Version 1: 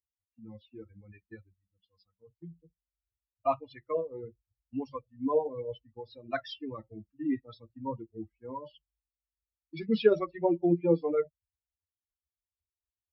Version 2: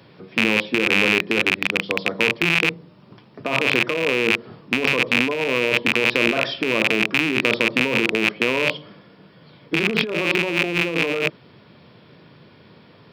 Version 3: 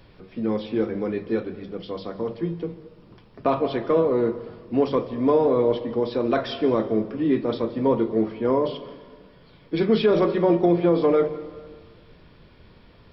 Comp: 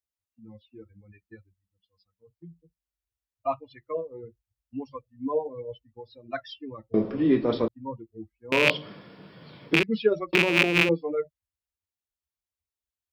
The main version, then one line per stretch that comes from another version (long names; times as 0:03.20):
1
0:06.94–0:07.68: punch in from 3
0:08.52–0:09.83: punch in from 2
0:10.33–0:10.89: punch in from 2